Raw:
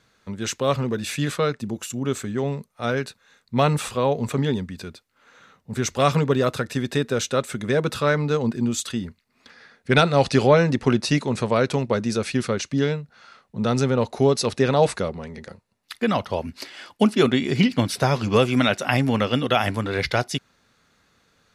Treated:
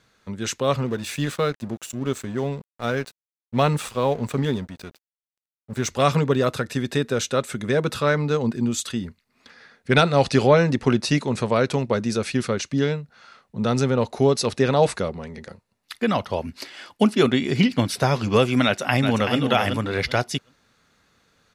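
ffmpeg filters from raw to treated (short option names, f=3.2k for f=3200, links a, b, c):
-filter_complex "[0:a]asettb=1/sr,asplit=3[a][b][c];[a]atrim=end=0.864[d];[b]atrim=start=0.86:end=5.88,asetpts=PTS-STARTPTS,afade=t=in:d=0.004:c=qsin,afade=t=out:st=5.016:d=0.004:c=qsin,aeval=exprs='sgn(val(0))*max(abs(val(0))-0.00891,0)':c=same[e];[c]atrim=start=5.876[f];[d][e]acrossfade=d=0.004:c1=hsin:c2=qsin[g];[g][f]acrossfade=d=0.004:c1=qsin:c2=hsin,asplit=2[h][i];[i]afade=t=in:st=18.64:d=0.01,afade=t=out:st=19.39:d=0.01,aecho=0:1:380|760|1140:0.473151|0.0709727|0.0106459[j];[h][j]amix=inputs=2:normalize=0"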